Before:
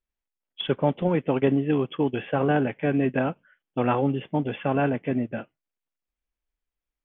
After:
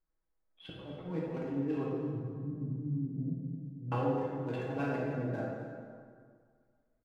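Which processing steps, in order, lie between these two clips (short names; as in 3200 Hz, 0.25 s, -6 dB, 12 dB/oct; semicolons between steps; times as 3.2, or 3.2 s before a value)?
Wiener smoothing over 15 samples; 1.86–3.92 inverse Chebyshev low-pass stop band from 1000 Hz, stop band 70 dB; comb 6.3 ms, depth 59%; de-hum 64.57 Hz, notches 3; limiter -16.5 dBFS, peak gain reduction 7.5 dB; compressor 2:1, threshold -44 dBFS, peak gain reduction 12.5 dB; auto swell 0.154 s; echo 0.262 s -13.5 dB; plate-style reverb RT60 2 s, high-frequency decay 0.6×, DRR -5 dB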